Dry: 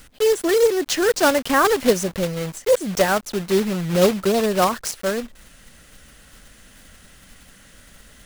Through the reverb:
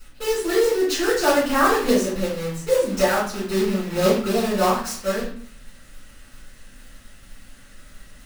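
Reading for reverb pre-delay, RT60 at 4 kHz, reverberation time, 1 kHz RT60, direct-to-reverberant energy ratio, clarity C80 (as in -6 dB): 3 ms, 0.40 s, 0.55 s, 0.55 s, -10.5 dB, 8.5 dB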